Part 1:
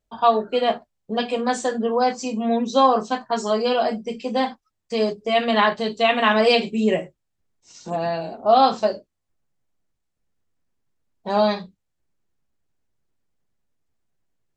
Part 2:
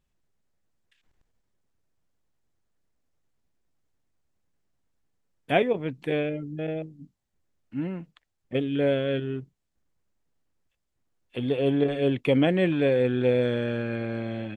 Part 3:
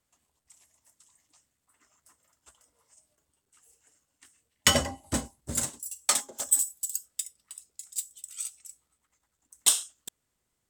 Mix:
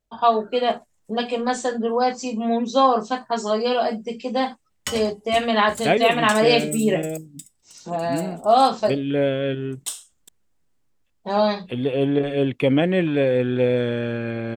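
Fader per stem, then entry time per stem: -0.5, +3.0, -8.0 dB; 0.00, 0.35, 0.20 s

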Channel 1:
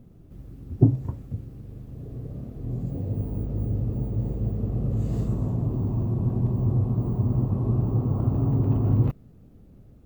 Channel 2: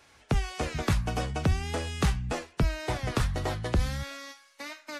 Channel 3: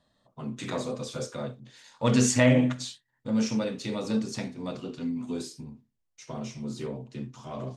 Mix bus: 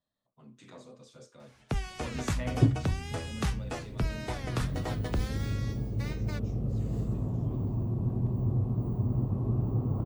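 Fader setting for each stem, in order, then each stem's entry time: -5.5, -5.0, -18.0 dB; 1.80, 1.40, 0.00 s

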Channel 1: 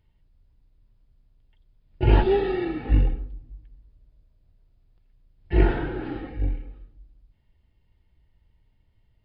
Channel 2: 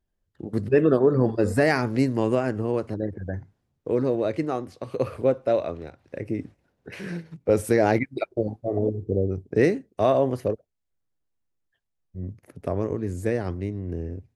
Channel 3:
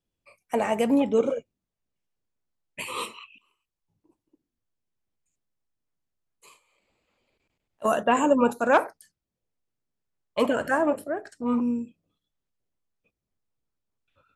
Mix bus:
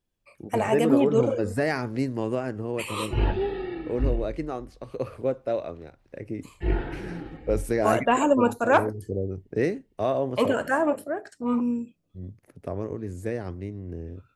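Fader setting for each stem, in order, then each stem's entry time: -6.5, -5.0, 0.0 dB; 1.10, 0.00, 0.00 s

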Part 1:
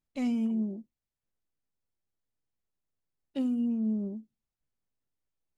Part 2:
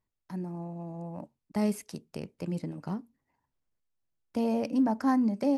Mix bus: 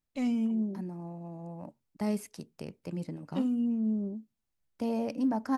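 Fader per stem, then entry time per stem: 0.0, -3.0 dB; 0.00, 0.45 s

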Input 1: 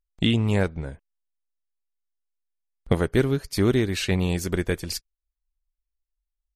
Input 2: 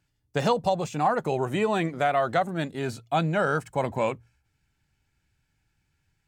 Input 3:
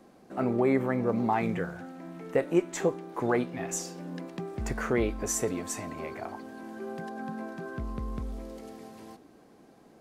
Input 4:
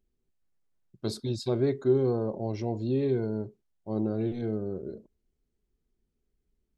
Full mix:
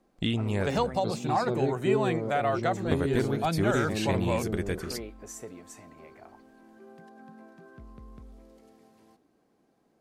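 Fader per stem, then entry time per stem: -7.0, -4.0, -12.5, -3.0 dB; 0.00, 0.30, 0.00, 0.00 s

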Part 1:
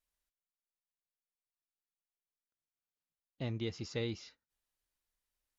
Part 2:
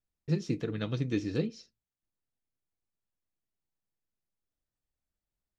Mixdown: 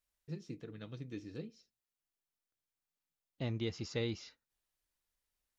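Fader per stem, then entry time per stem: +0.5, -14.0 dB; 0.00, 0.00 s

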